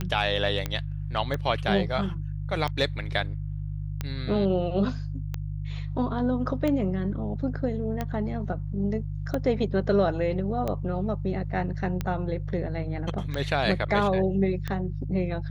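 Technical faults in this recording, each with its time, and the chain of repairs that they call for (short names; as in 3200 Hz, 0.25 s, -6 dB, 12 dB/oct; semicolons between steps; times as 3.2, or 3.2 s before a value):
hum 50 Hz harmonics 3 -32 dBFS
tick 45 rpm -16 dBFS
0.66 pop -14 dBFS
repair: de-click; de-hum 50 Hz, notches 3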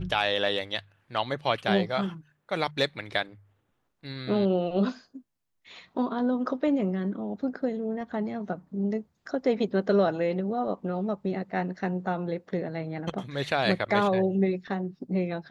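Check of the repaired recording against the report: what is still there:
none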